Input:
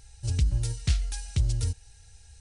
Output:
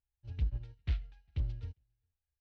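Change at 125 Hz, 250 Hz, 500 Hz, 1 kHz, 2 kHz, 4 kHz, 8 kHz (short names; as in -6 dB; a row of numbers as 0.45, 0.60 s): -11.0 dB, -12.5 dB, -12.0 dB, -12.5 dB, -12.0 dB, -18.5 dB, under -35 dB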